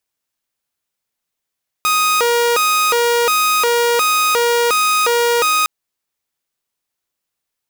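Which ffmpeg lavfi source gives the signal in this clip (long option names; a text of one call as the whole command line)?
ffmpeg -f lavfi -i "aevalsrc='0.316*(2*mod((862*t+388/1.4*(0.5-abs(mod(1.4*t,1)-0.5))),1)-1)':duration=3.81:sample_rate=44100" out.wav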